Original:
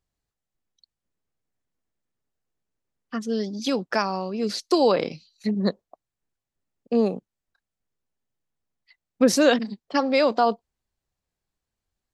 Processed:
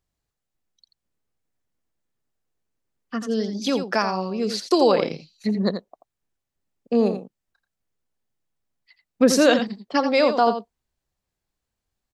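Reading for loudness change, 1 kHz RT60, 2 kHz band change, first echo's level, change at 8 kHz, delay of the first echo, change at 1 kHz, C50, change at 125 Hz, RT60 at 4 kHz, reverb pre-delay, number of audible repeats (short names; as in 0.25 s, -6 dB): +2.0 dB, none, +2.0 dB, -9.0 dB, +2.0 dB, 85 ms, +2.0 dB, none, +2.0 dB, none, none, 1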